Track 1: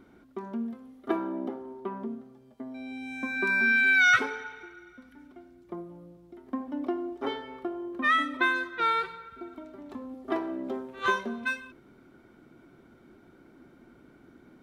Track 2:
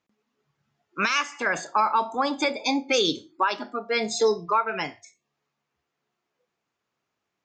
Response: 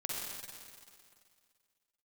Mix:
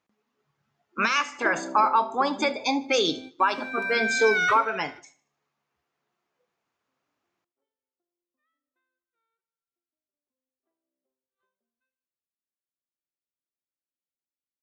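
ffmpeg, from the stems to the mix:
-filter_complex "[0:a]equalizer=f=550:w=6.1:g=13,adelay=350,volume=-4dB[a];[1:a]equalizer=f=990:t=o:w=2.3:g=4,volume=-2.5dB,asplit=3[b][c][d];[c]volume=-19.5dB[e];[d]apad=whole_len=660408[f];[a][f]sidechaingate=range=-53dB:threshold=-43dB:ratio=16:detection=peak[g];[e]aecho=0:1:76|152|228|304|380:1|0.39|0.152|0.0593|0.0231[h];[g][b][h]amix=inputs=3:normalize=0"

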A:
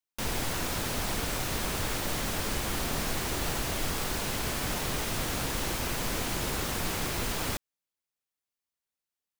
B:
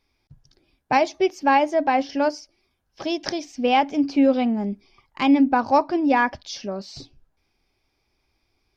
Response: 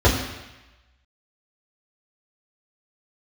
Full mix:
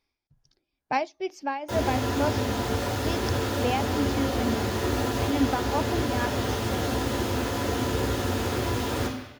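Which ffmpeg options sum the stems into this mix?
-filter_complex "[0:a]highpass=130,adelay=1500,volume=-10dB,asplit=2[a][b];[b]volume=-7dB[c];[1:a]tremolo=f=2.2:d=0.73,volume=-5.5dB,asplit=2[d][e];[e]apad=whole_len=480522[f];[a][f]sidechaincompress=threshold=-29dB:ratio=8:attack=16:release=1040[g];[2:a]atrim=start_sample=2205[h];[c][h]afir=irnorm=-1:irlink=0[i];[g][d][i]amix=inputs=3:normalize=0,lowshelf=f=220:g=-4.5"

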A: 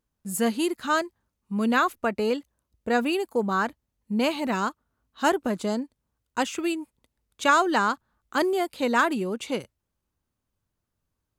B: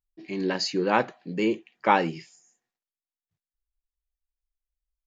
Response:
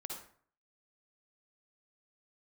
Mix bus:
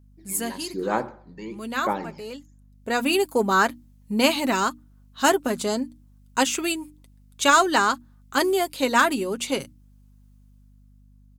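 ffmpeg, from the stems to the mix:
-filter_complex "[0:a]highshelf=f=3.6k:g=9.5,aecho=1:1:7.4:0.39,dynaudnorm=f=120:g=17:m=11.5dB,volume=-3.5dB[a];[1:a]equalizer=f=2.8k:t=o:w=0.32:g=-12.5,aphaser=in_gain=1:out_gain=1:delay=1.1:decay=0.65:speed=1.1:type=sinusoidal,volume=-11dB,asplit=3[b][c][d];[c]volume=-10dB[e];[d]apad=whole_len=502583[f];[a][f]sidechaincompress=threshold=-38dB:ratio=16:attack=11:release=1050[g];[2:a]atrim=start_sample=2205[h];[e][h]afir=irnorm=-1:irlink=0[i];[g][b][i]amix=inputs=3:normalize=0,bandreject=f=60:t=h:w=6,bandreject=f=120:t=h:w=6,bandreject=f=180:t=h:w=6,bandreject=f=240:t=h:w=6,bandreject=f=300:t=h:w=6,aeval=exprs='val(0)+0.00251*(sin(2*PI*50*n/s)+sin(2*PI*2*50*n/s)/2+sin(2*PI*3*50*n/s)/3+sin(2*PI*4*50*n/s)/4+sin(2*PI*5*50*n/s)/5)':c=same"

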